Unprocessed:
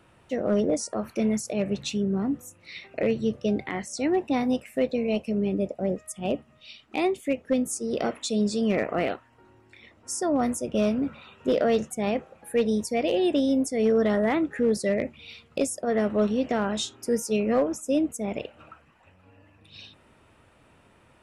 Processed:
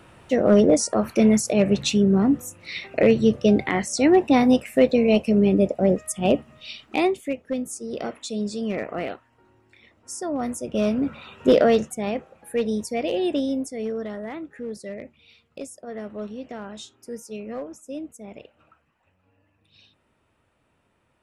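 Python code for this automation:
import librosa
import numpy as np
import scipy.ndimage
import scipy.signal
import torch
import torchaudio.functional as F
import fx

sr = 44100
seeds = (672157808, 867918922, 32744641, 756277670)

y = fx.gain(x, sr, db=fx.line((6.82, 8.0), (7.41, -3.0), (10.38, -3.0), (11.52, 8.0), (12.04, -0.5), (13.37, -0.5), (14.14, -10.0)))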